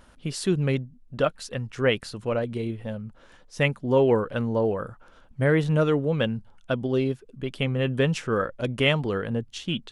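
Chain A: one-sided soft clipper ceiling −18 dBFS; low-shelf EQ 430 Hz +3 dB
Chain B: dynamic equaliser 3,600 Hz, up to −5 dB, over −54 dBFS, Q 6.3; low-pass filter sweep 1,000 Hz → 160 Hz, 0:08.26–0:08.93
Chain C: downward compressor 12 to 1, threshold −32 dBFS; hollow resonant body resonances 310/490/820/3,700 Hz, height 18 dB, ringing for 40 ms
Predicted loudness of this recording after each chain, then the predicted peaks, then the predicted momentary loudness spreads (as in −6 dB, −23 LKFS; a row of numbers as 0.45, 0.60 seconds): −25.5, −24.5, −26.5 LKFS; −8.0, −6.5, −10.5 dBFS; 11, 14, 9 LU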